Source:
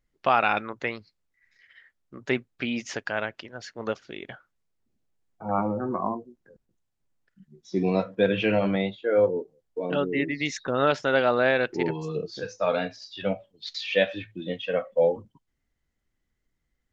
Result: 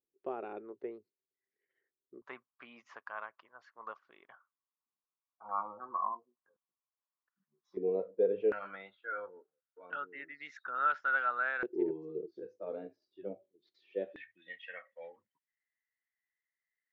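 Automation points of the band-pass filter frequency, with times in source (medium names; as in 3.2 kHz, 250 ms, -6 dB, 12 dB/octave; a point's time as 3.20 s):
band-pass filter, Q 7.2
390 Hz
from 2.22 s 1.1 kHz
from 7.77 s 440 Hz
from 8.52 s 1.4 kHz
from 11.63 s 370 Hz
from 14.16 s 1.9 kHz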